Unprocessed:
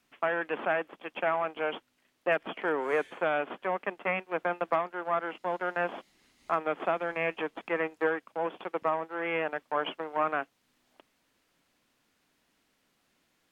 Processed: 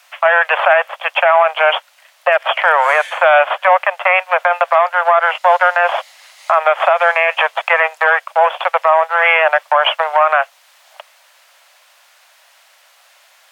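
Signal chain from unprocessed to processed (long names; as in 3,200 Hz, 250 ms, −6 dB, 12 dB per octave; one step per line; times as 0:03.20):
Butterworth high-pass 560 Hz 72 dB per octave
boost into a limiter +25 dB
level −1 dB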